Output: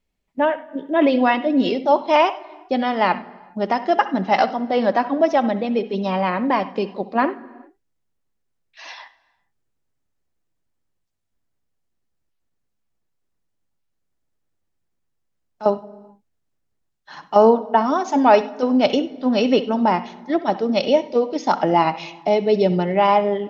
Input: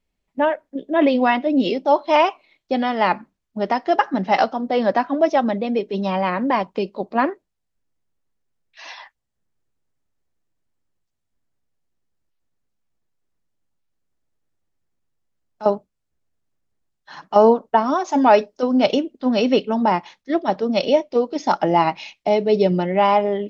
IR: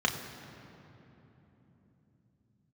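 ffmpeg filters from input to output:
-filter_complex "[0:a]asplit=2[link_01][link_02];[1:a]atrim=start_sample=2205,afade=type=out:start_time=0.42:duration=0.01,atrim=end_sample=18963,adelay=65[link_03];[link_02][link_03]afir=irnorm=-1:irlink=0,volume=-23.5dB[link_04];[link_01][link_04]amix=inputs=2:normalize=0"

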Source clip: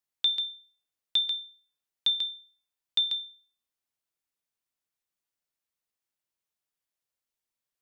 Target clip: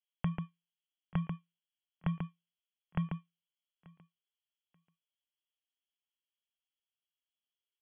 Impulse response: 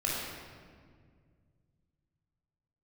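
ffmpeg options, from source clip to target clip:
-filter_complex "[0:a]adynamicsmooth=sensitivity=7.5:basefreq=550,asplit=2[link_01][link_02];[link_02]adelay=885,lowpass=frequency=2500:poles=1,volume=-20.5dB,asplit=2[link_03][link_04];[link_04]adelay=885,lowpass=frequency=2500:poles=1,volume=0.26[link_05];[link_01][link_03][link_05]amix=inputs=3:normalize=0,lowpass=frequency=2900:width_type=q:width=0.5098,lowpass=frequency=2900:width_type=q:width=0.6013,lowpass=frequency=2900:width_type=q:width=0.9,lowpass=frequency=2900:width_type=q:width=2.563,afreqshift=-3400,volume=7.5dB"

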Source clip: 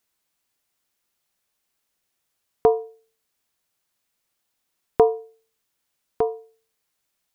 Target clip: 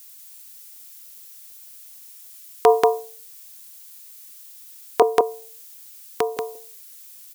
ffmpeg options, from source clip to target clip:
ffmpeg -i in.wav -filter_complex "[0:a]aderivative,asettb=1/sr,asplit=3[link_01][link_02][link_03];[link_01]atrim=end=5.024[link_04];[link_02]atrim=start=5.02:end=6.37,asetpts=PTS-STARTPTS,afade=type=in:duration=0.004:curve=qsin,afade=type=out:start_time=1.346:duration=0.004:curve=qsin,acrossover=split=360[link_05][link_06];[link_06]acompressor=threshold=-55dB:ratio=3[link_07];[link_05][link_07]amix=inputs=2:normalize=0[link_08];[link_03]atrim=start=6.366[link_09];[link_04][link_08]acrossfade=duration=0.004:curve1=hsin:curve2=qsin[link_10];[link_10][link_09]acrossfade=duration=0.004:curve1=qsin:curve2=hsin,aecho=1:1:185:0.531,alimiter=level_in=29.5dB:limit=-1dB:release=50:level=0:latency=1,volume=-1dB" out.wav

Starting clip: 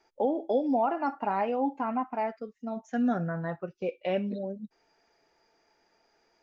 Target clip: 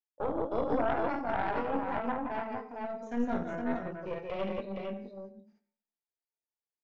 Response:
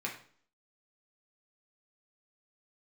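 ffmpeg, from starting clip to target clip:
-filter_complex "[0:a]asplit=2[link_01][link_02];[link_02]adelay=21,volume=-6.5dB[link_03];[link_01][link_03]amix=inputs=2:normalize=0,agate=range=-34dB:threshold=-60dB:ratio=16:detection=peak,aecho=1:1:51|160|162|409|433|461:0.531|0.299|0.562|0.119|0.668|0.1,asplit=2[link_04][link_05];[1:a]atrim=start_sample=2205,adelay=84[link_06];[link_05][link_06]afir=irnorm=-1:irlink=0,volume=-15.5dB[link_07];[link_04][link_07]amix=inputs=2:normalize=0,atempo=0.94,aeval=exprs='0.299*(cos(1*acos(clip(val(0)/0.299,-1,1)))-cos(1*PI/2))+0.075*(cos(4*acos(clip(val(0)/0.299,-1,1)))-cos(4*PI/2))':channel_layout=same,volume=-8.5dB"

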